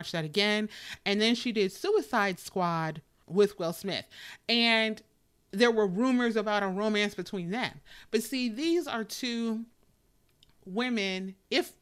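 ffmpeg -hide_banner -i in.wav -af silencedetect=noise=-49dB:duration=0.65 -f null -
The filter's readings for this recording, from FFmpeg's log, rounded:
silence_start: 9.64
silence_end: 10.43 | silence_duration: 0.78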